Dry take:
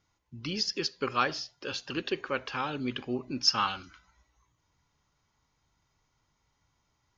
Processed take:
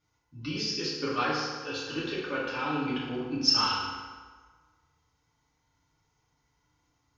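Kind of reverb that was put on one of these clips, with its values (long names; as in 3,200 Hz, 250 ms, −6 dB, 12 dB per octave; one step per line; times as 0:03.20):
feedback delay network reverb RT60 1.5 s, low-frequency decay 0.85×, high-frequency decay 0.7×, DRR −8 dB
level −7.5 dB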